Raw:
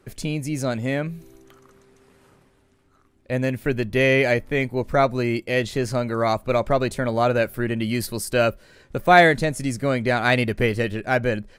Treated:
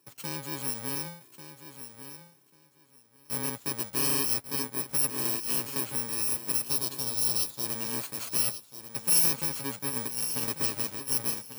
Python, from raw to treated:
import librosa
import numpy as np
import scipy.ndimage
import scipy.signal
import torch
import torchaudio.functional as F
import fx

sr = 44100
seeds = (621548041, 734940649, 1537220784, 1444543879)

y = fx.bit_reversed(x, sr, seeds[0], block=64)
y = scipy.signal.sosfilt(scipy.signal.butter(2, 160.0, 'highpass', fs=sr, output='sos'), y)
y = fx.low_shelf(y, sr, hz=470.0, db=-4.5)
y = y + 0.37 * np.pad(y, (int(7.2 * sr / 1000.0), 0))[:len(y)]
y = 10.0 ** (-7.0 / 20.0) * np.tanh(y / 10.0 ** (-7.0 / 20.0))
y = fx.graphic_eq(y, sr, hz=(250, 2000, 4000), db=(-4, -11, 8), at=(6.66, 7.66))
y = fx.over_compress(y, sr, threshold_db=-24.0, ratio=-0.5, at=(9.89, 10.57))
y = fx.echo_feedback(y, sr, ms=1142, feedback_pct=17, wet_db=-11.5)
y = fx.band_squash(y, sr, depth_pct=100, at=(5.25, 5.81))
y = y * 10.0 ** (-8.0 / 20.0)